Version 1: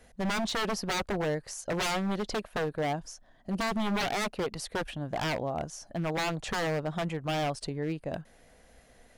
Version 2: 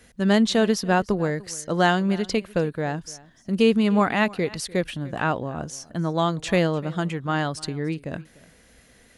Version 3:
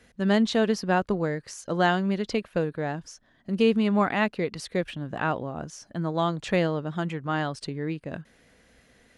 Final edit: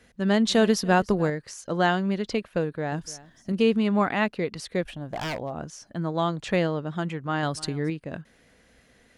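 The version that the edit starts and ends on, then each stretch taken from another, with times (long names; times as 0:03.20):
3
0:00.47–0:01.30: punch in from 2
0:02.92–0:03.52: punch in from 2
0:04.85–0:05.53: punch in from 1
0:07.43–0:07.90: punch in from 2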